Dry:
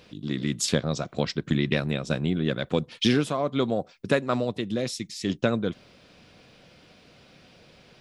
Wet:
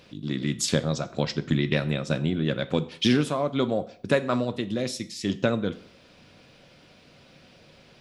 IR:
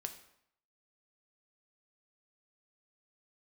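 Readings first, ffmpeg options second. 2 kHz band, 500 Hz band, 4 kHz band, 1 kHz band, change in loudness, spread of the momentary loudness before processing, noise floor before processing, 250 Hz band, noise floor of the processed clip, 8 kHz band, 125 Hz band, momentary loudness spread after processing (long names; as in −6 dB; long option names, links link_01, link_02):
0.0 dB, +0.5 dB, 0.0 dB, 0.0 dB, +0.5 dB, 6 LU, −56 dBFS, +0.5 dB, −55 dBFS, 0.0 dB, +1.0 dB, 7 LU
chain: -filter_complex "[0:a]asplit=2[link_01][link_02];[1:a]atrim=start_sample=2205,asetrate=57330,aresample=44100[link_03];[link_02][link_03]afir=irnorm=-1:irlink=0,volume=7dB[link_04];[link_01][link_04]amix=inputs=2:normalize=0,volume=-7dB"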